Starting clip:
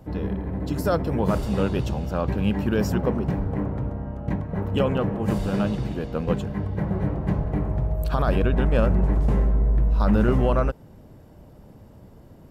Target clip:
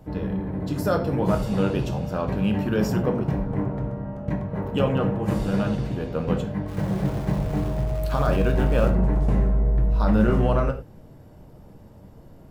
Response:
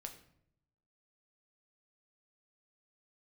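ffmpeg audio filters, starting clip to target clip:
-filter_complex "[0:a]asplit=3[link_01][link_02][link_03];[link_01]afade=type=out:start_time=6.67:duration=0.02[link_04];[link_02]aeval=exprs='val(0)*gte(abs(val(0)),0.0178)':channel_layout=same,afade=type=in:start_time=6.67:duration=0.02,afade=type=out:start_time=8.89:duration=0.02[link_05];[link_03]afade=type=in:start_time=8.89:duration=0.02[link_06];[link_04][link_05][link_06]amix=inputs=3:normalize=0[link_07];[1:a]atrim=start_sample=2205,afade=type=out:start_time=0.17:duration=0.01,atrim=end_sample=7938[link_08];[link_07][link_08]afir=irnorm=-1:irlink=0,volume=4.5dB"

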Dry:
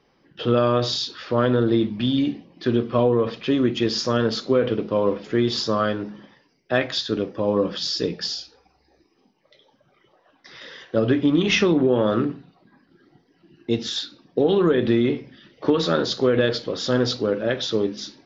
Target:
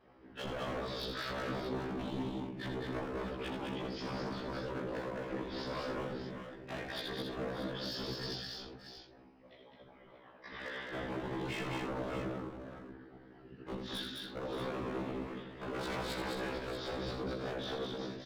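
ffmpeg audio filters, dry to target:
ffmpeg -i in.wav -filter_complex "[0:a]lowpass=2200,acompressor=threshold=-33dB:ratio=6,asplit=2[link_01][link_02];[link_02]alimiter=level_in=7dB:limit=-24dB:level=0:latency=1,volume=-7dB,volume=0dB[link_03];[link_01][link_03]amix=inputs=2:normalize=0,asettb=1/sr,asplit=3[link_04][link_05][link_06];[link_04]atrim=end=15.754[link_07];[link_05]atrim=start=15.75:end=16.32,asetpts=PTS-STARTPTS,afade=type=in:duration=0.004:curve=qsin,afade=type=out:start_time=0.566:duration=0.004:curve=qsin,acontrast=41[link_08];[link_06]atrim=start=16.316[link_09];[link_07][link_08]acrossfade=duration=0.004:curve1=hsin:curve2=qsin[link_10];[link_10][link_09]acrossfade=duration=0.004:curve1=qsin:curve2=hsin,asoftclip=type=tanh:threshold=-19dB,afftfilt=real='hypot(re,im)*cos(2*PI*random(0))':imag='hypot(re,im)*sin(2*PI*random(1))':win_size=512:overlap=0.75,aeval=exprs='0.0178*(abs(mod(val(0)/0.0178+3,4)-2)-1)':channel_layout=same,tremolo=f=45:d=0.621,aecho=1:1:81|209|270|579|630:0.447|0.668|0.316|0.158|0.316,afftfilt=real='re*1.73*eq(mod(b,3),0)':imag='im*1.73*eq(mod(b,3),0)':win_size=2048:overlap=0.75,volume=5dB" out.wav

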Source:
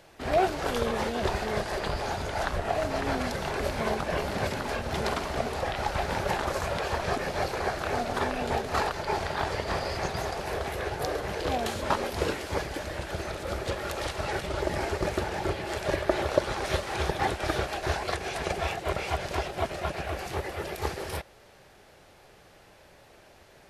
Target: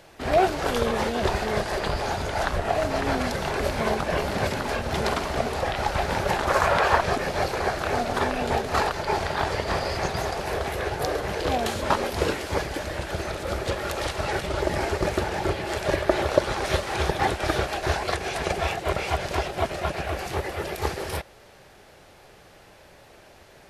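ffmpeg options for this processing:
ffmpeg -i in.wav -filter_complex "[0:a]asettb=1/sr,asplit=3[link_01][link_02][link_03];[link_01]atrim=end=6.494[link_04];[link_02]atrim=start=6.49:end=7.01,asetpts=PTS-STARTPTS,afade=type=in:duration=0.004:curve=qsin,afade=type=out:start_time=0.516:duration=0.004:curve=qsin,equalizer=frequency=1200:width=0.66:gain=9.5[link_05];[link_03]atrim=start=7.006[link_06];[link_04][link_05]acrossfade=duration=0.004:curve1=hsin:curve2=qsin[link_07];[link_07][link_06]acrossfade=duration=0.004:curve1=qsin:curve2=hsin,volume=4dB" out.wav

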